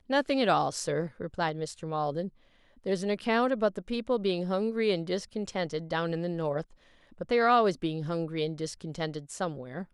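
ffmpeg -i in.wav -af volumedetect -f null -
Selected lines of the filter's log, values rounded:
mean_volume: -30.1 dB
max_volume: -11.4 dB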